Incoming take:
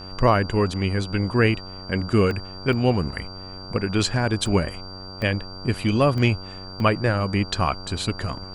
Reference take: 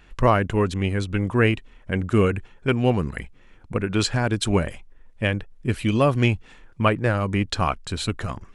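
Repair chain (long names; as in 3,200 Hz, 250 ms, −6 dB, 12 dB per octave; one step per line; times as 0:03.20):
hum removal 94 Hz, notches 16
notch filter 4,700 Hz, Q 30
repair the gap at 0:02.31/0:02.73/0:04.46/0:05.22/0:06.18/0:06.80, 1.1 ms
noise reduction from a noise print 11 dB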